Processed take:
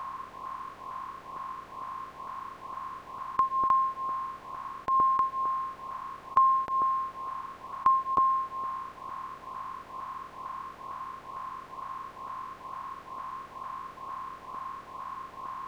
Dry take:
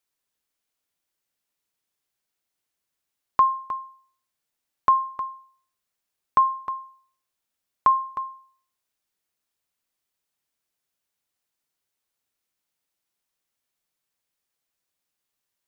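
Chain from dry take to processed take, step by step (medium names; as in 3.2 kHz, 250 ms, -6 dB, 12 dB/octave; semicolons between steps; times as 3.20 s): spectral levelling over time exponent 0.2; LFO notch saw up 2.2 Hz 330–1800 Hz; trim -5.5 dB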